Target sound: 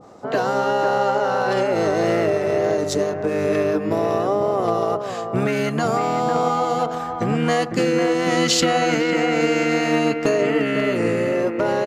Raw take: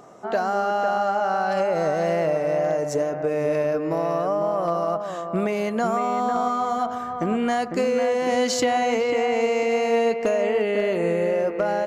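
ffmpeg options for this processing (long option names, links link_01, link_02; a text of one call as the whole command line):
ffmpeg -i in.wav -filter_complex "[0:a]asplit=2[link_01][link_02];[link_02]asetrate=29433,aresample=44100,atempo=1.49831,volume=-1dB[link_03];[link_01][link_03]amix=inputs=2:normalize=0,adynamicequalizer=threshold=0.0178:dfrequency=1500:dqfactor=0.7:tfrequency=1500:tqfactor=0.7:attack=5:release=100:ratio=0.375:range=3:mode=boostabove:tftype=highshelf" out.wav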